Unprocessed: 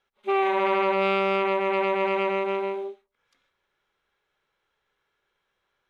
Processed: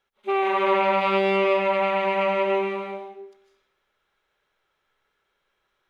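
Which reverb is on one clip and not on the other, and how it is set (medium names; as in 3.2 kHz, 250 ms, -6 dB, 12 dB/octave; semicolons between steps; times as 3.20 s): algorithmic reverb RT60 0.73 s, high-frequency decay 0.9×, pre-delay 110 ms, DRR 0.5 dB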